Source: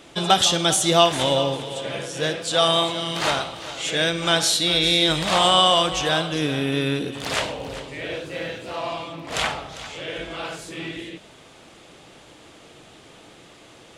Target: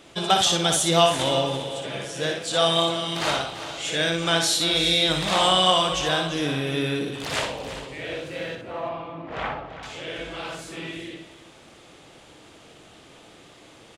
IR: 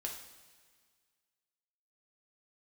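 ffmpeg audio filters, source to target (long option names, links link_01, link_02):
-filter_complex "[0:a]asettb=1/sr,asplit=3[link_01][link_02][link_03];[link_01]atrim=end=8.554[link_04];[link_02]atrim=start=8.55:end=9.83,asetpts=PTS-STARTPTS,afade=type=in:duration=0.004:curve=qsin,afade=type=out:start_time=1.276:duration=0.004:curve=qsin,lowpass=1700[link_05];[link_03]atrim=start=9.826[link_06];[link_04][link_05]acrossfade=duration=0.004:curve1=hsin:curve2=qsin[link_07];[link_07][link_06]acrossfade=duration=0.004:curve1=qsin:curve2=hsin,aecho=1:1:60|337:0.531|0.211,volume=-3dB"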